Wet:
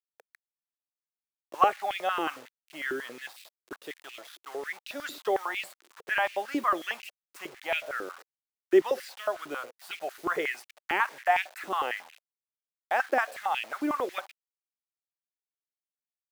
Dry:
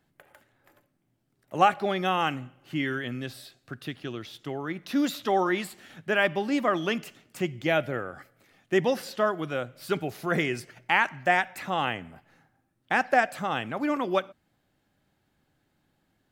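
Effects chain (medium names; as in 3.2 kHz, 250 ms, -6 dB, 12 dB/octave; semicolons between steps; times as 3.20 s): bit crusher 7-bit; step-sequenced high-pass 11 Hz 350–2500 Hz; trim -7 dB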